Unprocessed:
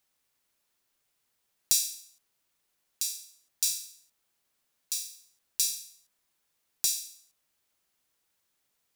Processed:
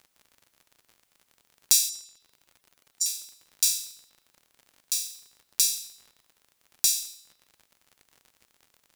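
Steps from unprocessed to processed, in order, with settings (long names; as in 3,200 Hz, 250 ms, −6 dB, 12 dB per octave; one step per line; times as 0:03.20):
0:01.89–0:03.06: expanding power law on the bin magnitudes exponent 2.7
feedback echo with a band-pass in the loop 114 ms, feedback 48%, band-pass 3,000 Hz, level −21 dB
surface crackle 63 per second −46 dBFS
in parallel at −10 dB: wave folding −13.5 dBFS
on the sum: level +2.5 dB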